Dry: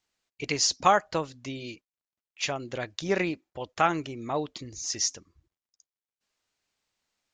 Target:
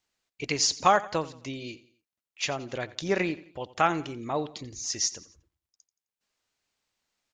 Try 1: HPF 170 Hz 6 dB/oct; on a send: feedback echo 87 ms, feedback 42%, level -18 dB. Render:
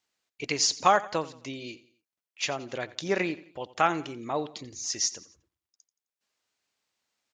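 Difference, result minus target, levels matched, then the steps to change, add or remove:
125 Hz band -3.5 dB
remove: HPF 170 Hz 6 dB/oct

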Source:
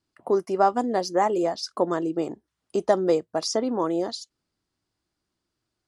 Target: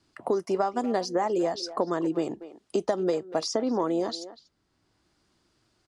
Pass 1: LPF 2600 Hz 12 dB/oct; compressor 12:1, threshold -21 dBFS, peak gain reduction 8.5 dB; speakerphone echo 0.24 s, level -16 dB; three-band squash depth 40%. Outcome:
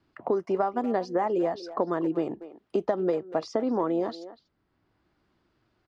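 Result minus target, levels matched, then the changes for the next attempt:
8000 Hz band -15.0 dB
change: LPF 8900 Hz 12 dB/oct

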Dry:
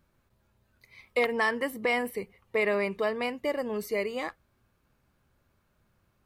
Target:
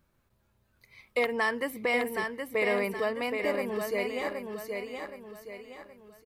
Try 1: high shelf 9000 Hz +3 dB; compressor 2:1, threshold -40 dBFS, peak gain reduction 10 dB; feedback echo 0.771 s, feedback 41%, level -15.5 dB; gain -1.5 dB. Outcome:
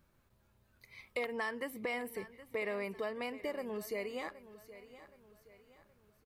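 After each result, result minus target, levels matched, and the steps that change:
compressor: peak gain reduction +10 dB; echo-to-direct -10.5 dB
remove: compressor 2:1, threshold -40 dBFS, peak gain reduction 10 dB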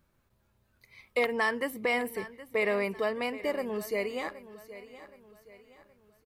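echo-to-direct -10.5 dB
change: feedback echo 0.771 s, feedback 41%, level -5 dB

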